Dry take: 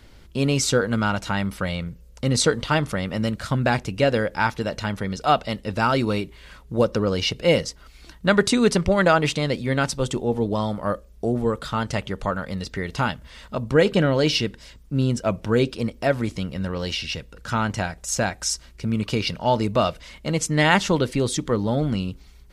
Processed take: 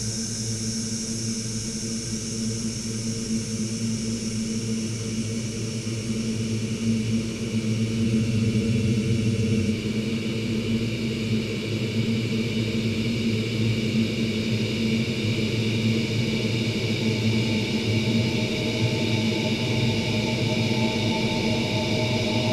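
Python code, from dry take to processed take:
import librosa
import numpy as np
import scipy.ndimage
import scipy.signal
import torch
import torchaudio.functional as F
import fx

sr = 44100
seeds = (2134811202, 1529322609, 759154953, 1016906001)

y = fx.spec_ripple(x, sr, per_octave=1.4, drift_hz=-2.7, depth_db=9)
y = fx.paulstretch(y, sr, seeds[0], factor=45.0, window_s=1.0, from_s=18.7)
y = fx.spec_freeze(y, sr, seeds[1], at_s=8.06, hold_s=1.65)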